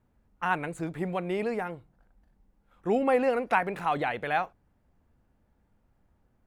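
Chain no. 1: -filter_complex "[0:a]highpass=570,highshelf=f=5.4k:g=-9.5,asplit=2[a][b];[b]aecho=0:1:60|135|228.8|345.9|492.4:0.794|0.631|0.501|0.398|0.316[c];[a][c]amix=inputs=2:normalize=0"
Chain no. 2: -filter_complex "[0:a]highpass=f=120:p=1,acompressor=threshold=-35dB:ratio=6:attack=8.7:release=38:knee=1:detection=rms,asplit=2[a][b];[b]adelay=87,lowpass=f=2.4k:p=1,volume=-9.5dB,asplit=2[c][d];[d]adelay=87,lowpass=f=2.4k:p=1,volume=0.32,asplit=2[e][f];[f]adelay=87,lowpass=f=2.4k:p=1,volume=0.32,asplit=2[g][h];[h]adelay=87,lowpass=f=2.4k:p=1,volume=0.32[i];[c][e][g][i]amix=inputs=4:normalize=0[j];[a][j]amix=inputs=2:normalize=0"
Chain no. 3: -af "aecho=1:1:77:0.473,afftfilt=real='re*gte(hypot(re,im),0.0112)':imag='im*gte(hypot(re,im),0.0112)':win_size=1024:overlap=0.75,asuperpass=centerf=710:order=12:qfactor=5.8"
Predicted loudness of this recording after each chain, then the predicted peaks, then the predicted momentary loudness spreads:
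-28.5, -38.0, -37.5 LUFS; -11.0, -23.0, -20.5 dBFS; 15, 9, 14 LU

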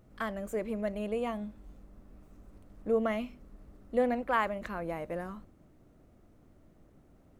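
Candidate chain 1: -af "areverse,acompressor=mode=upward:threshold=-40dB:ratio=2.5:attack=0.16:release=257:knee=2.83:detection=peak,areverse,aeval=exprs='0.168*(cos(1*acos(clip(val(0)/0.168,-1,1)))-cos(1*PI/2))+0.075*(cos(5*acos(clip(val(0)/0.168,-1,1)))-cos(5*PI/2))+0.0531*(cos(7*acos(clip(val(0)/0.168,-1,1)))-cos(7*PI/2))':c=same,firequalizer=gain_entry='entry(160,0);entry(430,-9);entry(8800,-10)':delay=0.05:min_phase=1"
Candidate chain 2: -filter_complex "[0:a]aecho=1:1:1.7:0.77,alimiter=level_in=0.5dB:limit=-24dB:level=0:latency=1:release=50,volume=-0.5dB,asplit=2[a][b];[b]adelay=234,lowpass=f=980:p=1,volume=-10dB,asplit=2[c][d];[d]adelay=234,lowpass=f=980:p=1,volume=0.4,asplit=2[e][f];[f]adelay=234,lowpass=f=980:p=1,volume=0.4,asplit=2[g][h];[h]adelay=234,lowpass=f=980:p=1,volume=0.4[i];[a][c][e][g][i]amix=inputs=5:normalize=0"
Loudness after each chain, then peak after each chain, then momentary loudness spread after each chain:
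-37.0, -35.0 LUFS; -21.5, -22.5 dBFS; 24, 20 LU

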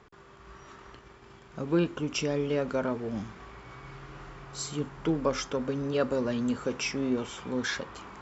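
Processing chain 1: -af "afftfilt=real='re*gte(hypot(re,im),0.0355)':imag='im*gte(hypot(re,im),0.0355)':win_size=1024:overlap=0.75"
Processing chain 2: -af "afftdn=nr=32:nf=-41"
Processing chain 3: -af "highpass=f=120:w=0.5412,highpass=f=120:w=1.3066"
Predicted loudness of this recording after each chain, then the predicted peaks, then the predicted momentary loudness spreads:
-31.0, -31.0, -31.0 LUFS; -13.0, -13.0, -14.0 dBFS; 11, 20, 19 LU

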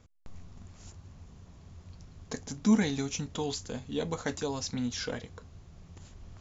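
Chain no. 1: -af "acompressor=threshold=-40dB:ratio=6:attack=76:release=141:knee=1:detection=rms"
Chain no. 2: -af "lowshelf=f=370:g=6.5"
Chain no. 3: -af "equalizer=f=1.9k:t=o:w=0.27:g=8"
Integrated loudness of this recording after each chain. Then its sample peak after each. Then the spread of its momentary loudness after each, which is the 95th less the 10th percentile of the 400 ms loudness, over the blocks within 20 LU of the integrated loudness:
-43.0, -28.5, -32.0 LUFS; -21.0, -9.5, -13.5 dBFS; 13, 25, 25 LU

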